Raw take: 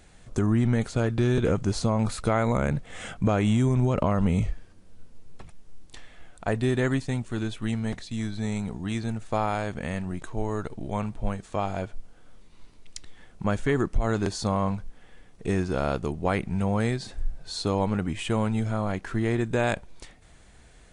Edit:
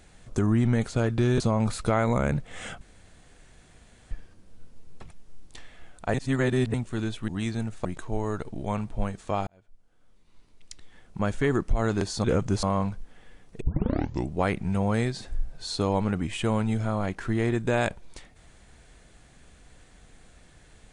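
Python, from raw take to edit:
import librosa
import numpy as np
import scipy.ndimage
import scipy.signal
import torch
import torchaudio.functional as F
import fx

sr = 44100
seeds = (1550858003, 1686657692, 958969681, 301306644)

y = fx.edit(x, sr, fx.move(start_s=1.4, length_s=0.39, to_s=14.49),
    fx.room_tone_fill(start_s=3.2, length_s=1.3),
    fx.reverse_span(start_s=6.53, length_s=0.6),
    fx.cut(start_s=7.67, length_s=1.1),
    fx.cut(start_s=9.34, length_s=0.76),
    fx.fade_in_span(start_s=11.72, length_s=2.04),
    fx.tape_start(start_s=15.47, length_s=0.72), tone=tone)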